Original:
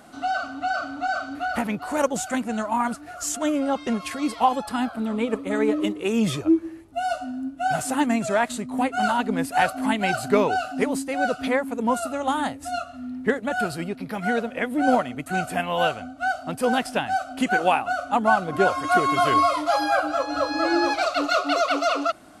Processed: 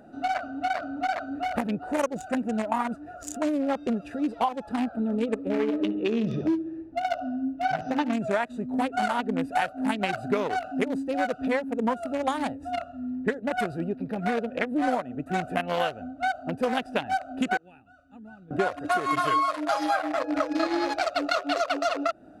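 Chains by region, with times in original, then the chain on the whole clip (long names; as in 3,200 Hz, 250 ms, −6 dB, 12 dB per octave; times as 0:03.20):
0:05.49–0:08.13: linear-phase brick-wall low-pass 6,300 Hz + repeating echo 68 ms, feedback 54%, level −10 dB
0:17.57–0:18.51: guitar amp tone stack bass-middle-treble 6-0-2 + one half of a high-frequency compander encoder only
0:19.10–0:20.67: comb filter 6.4 ms, depth 82% + one half of a high-frequency compander decoder only
whole clip: adaptive Wiener filter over 41 samples; low-shelf EQ 310 Hz −8 dB; downward compressor 6 to 1, threshold −29 dBFS; level +6.5 dB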